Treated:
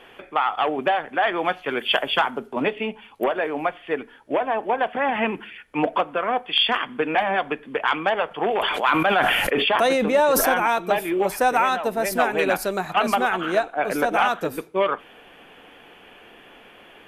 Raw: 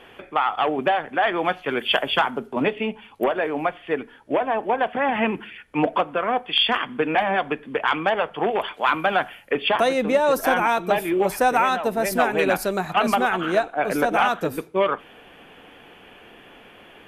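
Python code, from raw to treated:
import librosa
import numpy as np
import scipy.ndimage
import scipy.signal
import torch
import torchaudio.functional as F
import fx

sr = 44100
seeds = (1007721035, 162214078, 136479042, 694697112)

y = fx.peak_eq(x, sr, hz=93.0, db=-5.0, octaves=2.8)
y = fx.sustainer(y, sr, db_per_s=21.0, at=(8.28, 10.48))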